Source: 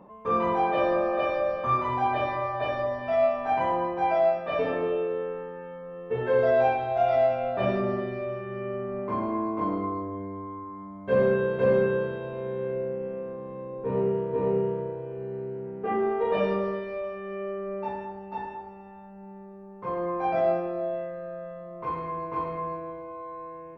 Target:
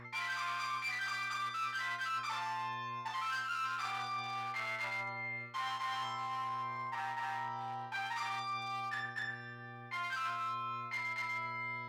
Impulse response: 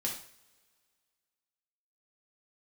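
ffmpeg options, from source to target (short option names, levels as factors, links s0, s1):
-af "aeval=exprs='clip(val(0),-1,0.0316)':c=same,highpass=f=470:w=0.5412,highpass=f=470:w=1.3066,aeval=exprs='val(0)+0.00282*(sin(2*PI*60*n/s)+sin(2*PI*2*60*n/s)/2+sin(2*PI*3*60*n/s)/3+sin(2*PI*4*60*n/s)/4+sin(2*PI*5*60*n/s)/5)':c=same,areverse,acompressor=threshold=0.0158:ratio=6,areverse,asetrate=88200,aresample=44100"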